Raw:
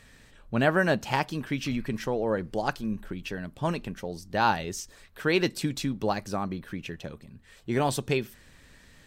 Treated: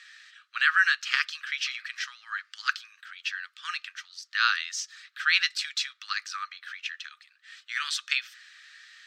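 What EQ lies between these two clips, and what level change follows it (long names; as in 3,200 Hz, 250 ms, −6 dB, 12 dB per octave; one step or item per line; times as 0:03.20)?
Chebyshev high-pass with heavy ripple 1,200 Hz, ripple 3 dB
high-frequency loss of the air 170 metres
spectral tilt +3.5 dB per octave
+7.0 dB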